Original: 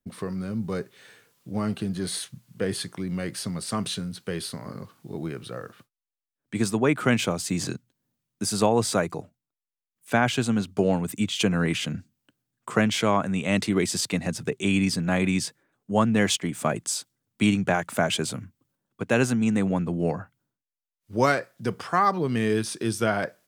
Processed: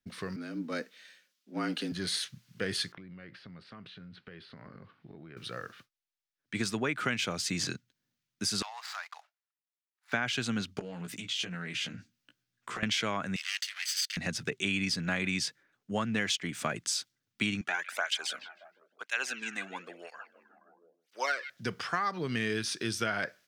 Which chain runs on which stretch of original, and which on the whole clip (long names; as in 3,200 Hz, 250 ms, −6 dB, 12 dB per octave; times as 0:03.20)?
0:00.36–0:01.92: frequency shifter +73 Hz + multiband upward and downward expander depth 70%
0:02.92–0:05.37: downward compressor 12 to 1, threshold −37 dBFS + high-frequency loss of the air 400 metres
0:08.62–0:10.13: running median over 15 samples + Butterworth high-pass 770 Hz 48 dB per octave + downward compressor 3 to 1, threshold −36 dBFS
0:10.79–0:12.83: downward compressor 12 to 1, threshold −32 dBFS + double-tracking delay 17 ms −4 dB + highs frequency-modulated by the lows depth 0.11 ms
0:13.36–0:14.17: lower of the sound and its delayed copy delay 0.63 ms + Bessel high-pass filter 2,400 Hz, order 4
0:17.61–0:21.50: high-pass filter 590 Hz + echo through a band-pass that steps 157 ms, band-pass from 2,800 Hz, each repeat −0.7 octaves, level −11 dB + through-zero flanger with one copy inverted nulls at 1 Hz, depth 2.3 ms
whole clip: flat-topped bell 2,900 Hz +9.5 dB 2.5 octaves; downward compressor, threshold −20 dBFS; level −7 dB